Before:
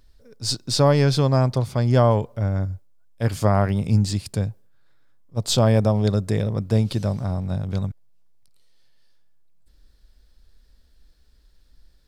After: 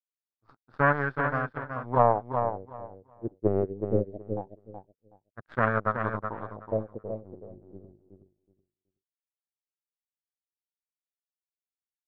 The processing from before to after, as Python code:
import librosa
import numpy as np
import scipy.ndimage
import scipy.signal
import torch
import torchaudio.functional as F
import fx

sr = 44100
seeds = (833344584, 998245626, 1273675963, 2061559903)

y = scipy.signal.sosfilt(scipy.signal.butter(2, 4800.0, 'lowpass', fs=sr, output='sos'), x)
y = fx.power_curve(y, sr, exponent=3.0)
y = fx.filter_lfo_lowpass(y, sr, shape='sine', hz=0.23, low_hz=360.0, high_hz=1600.0, q=6.8)
y = fx.echo_feedback(y, sr, ms=373, feedback_pct=18, wet_db=-7.0)